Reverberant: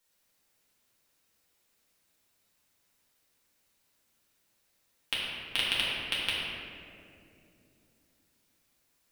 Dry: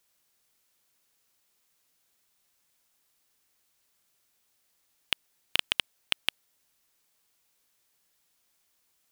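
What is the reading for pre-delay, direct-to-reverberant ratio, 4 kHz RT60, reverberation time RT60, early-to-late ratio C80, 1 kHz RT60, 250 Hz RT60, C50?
4 ms, −8.0 dB, 1.3 s, 2.7 s, −0.5 dB, 2.1 s, 4.0 s, −2.0 dB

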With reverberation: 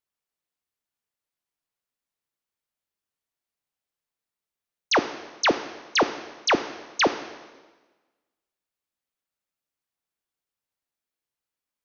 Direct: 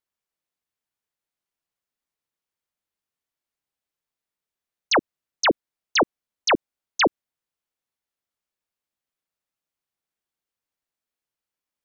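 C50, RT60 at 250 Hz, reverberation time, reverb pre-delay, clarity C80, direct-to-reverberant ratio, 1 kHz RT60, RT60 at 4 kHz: 11.5 dB, 1.3 s, 1.3 s, 5 ms, 13.5 dB, 9.5 dB, 1.3 s, 1.2 s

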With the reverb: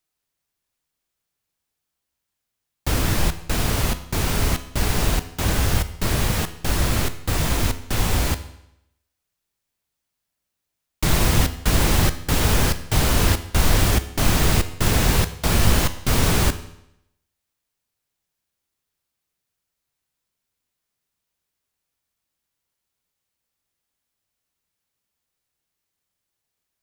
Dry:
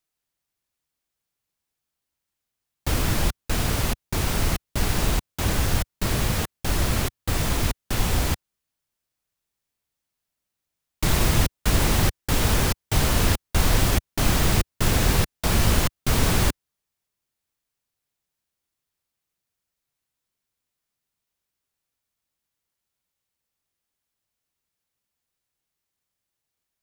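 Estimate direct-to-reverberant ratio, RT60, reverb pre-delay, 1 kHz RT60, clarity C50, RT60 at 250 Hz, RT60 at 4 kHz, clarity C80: 10.5 dB, 0.80 s, 12 ms, 0.80 s, 13.5 dB, 0.80 s, 0.75 s, 16.0 dB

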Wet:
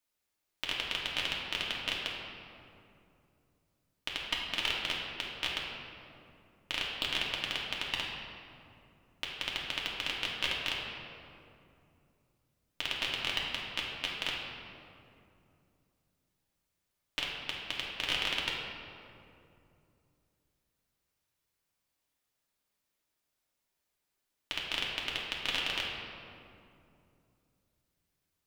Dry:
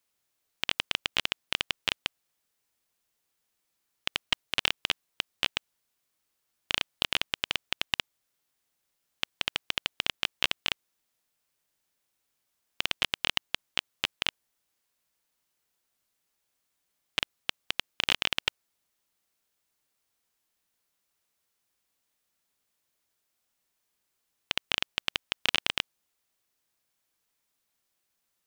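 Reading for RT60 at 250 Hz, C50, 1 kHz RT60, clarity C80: 3.4 s, 0.5 dB, 2.4 s, 2.0 dB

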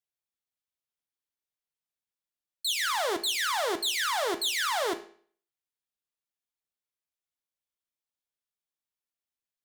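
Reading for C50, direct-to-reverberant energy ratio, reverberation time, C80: 13.5 dB, 7.0 dB, 0.50 s, 17.5 dB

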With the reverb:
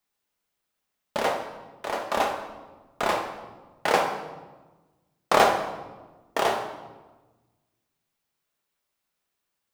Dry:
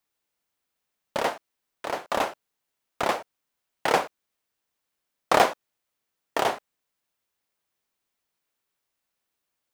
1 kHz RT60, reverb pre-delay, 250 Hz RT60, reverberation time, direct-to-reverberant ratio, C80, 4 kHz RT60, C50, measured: 1.2 s, 5 ms, 1.7 s, 1.2 s, 2.0 dB, 8.5 dB, 0.90 s, 6.0 dB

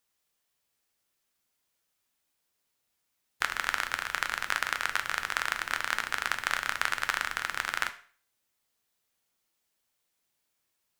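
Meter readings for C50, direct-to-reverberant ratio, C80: 14.5 dB, 8.0 dB, 18.5 dB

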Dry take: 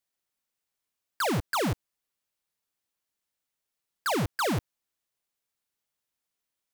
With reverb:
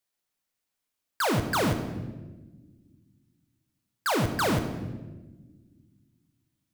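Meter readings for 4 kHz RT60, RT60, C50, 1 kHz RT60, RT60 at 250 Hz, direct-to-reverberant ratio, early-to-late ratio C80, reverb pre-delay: 0.90 s, 1.3 s, 9.0 dB, 1.1 s, 2.5 s, 6.0 dB, 10.5 dB, 7 ms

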